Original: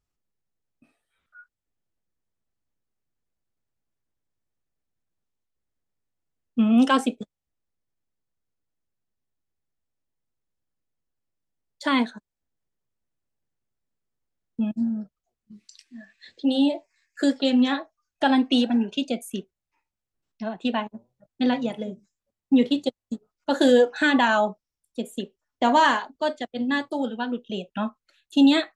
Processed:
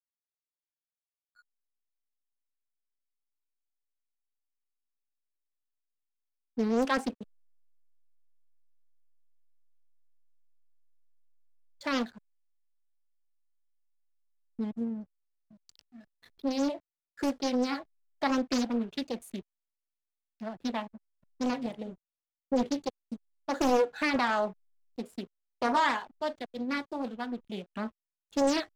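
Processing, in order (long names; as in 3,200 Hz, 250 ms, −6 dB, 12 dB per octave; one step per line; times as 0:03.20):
slack as between gear wheels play −40.5 dBFS
highs frequency-modulated by the lows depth 0.87 ms
level −7.5 dB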